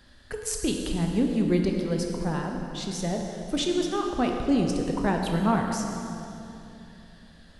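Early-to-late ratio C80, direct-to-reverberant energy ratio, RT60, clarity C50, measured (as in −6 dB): 3.5 dB, 1.5 dB, 2.9 s, 2.5 dB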